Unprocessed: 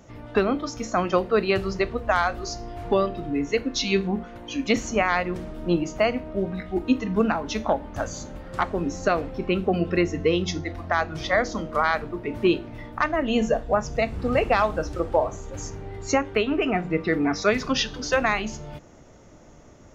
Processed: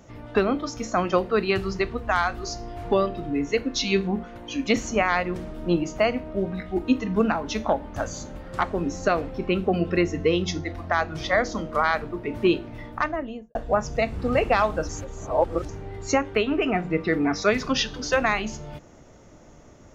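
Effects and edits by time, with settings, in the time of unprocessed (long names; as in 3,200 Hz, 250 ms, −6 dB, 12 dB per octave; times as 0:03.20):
0:01.31–0:02.44: parametric band 570 Hz −8 dB 0.38 octaves
0:12.90–0:13.55: fade out and dull
0:14.89–0:15.69: reverse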